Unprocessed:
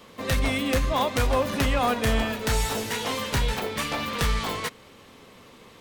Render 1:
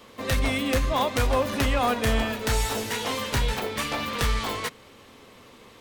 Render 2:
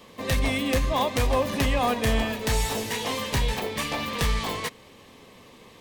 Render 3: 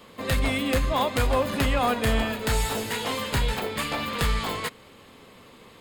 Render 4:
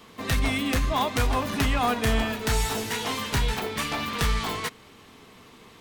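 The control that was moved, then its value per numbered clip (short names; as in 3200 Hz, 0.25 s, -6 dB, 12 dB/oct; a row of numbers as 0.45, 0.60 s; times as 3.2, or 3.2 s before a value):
notch, frequency: 170, 1400, 5800, 540 Hz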